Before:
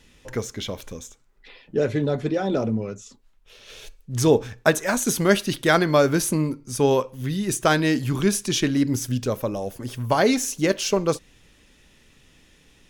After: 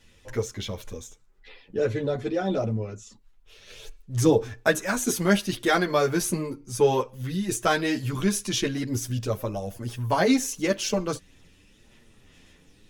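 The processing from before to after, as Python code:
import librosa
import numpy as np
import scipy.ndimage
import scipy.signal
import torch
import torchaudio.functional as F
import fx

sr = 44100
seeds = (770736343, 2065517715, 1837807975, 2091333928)

y = fx.chorus_voices(x, sr, voices=4, hz=0.91, base_ms=10, depth_ms=1.5, mix_pct=50)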